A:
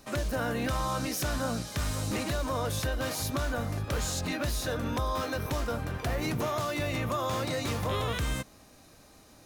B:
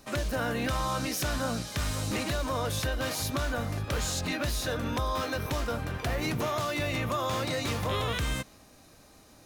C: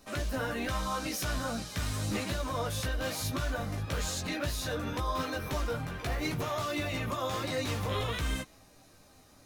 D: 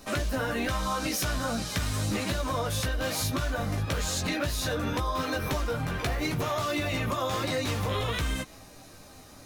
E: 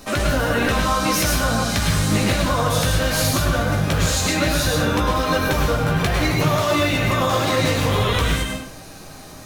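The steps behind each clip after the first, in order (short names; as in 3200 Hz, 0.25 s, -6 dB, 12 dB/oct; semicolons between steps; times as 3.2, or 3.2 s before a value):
dynamic EQ 2900 Hz, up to +3 dB, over -50 dBFS, Q 0.71
chorus voices 6, 0.4 Hz, delay 15 ms, depth 4.9 ms
compressor, threshold -35 dBFS, peak gain reduction 7.5 dB; gain +9 dB
plate-style reverb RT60 0.59 s, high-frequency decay 0.85×, pre-delay 90 ms, DRR 0 dB; gain +7.5 dB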